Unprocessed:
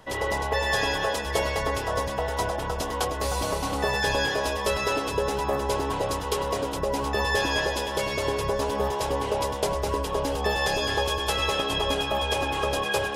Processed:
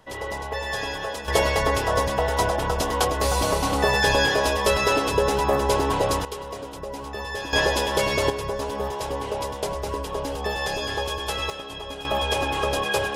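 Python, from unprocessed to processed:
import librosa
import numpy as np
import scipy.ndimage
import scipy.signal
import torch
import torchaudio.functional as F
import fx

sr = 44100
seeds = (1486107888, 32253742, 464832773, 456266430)

y = fx.gain(x, sr, db=fx.steps((0.0, -4.0), (1.28, 5.0), (6.25, -7.0), (7.53, 5.0), (8.3, -2.0), (11.5, -9.5), (12.05, 2.0)))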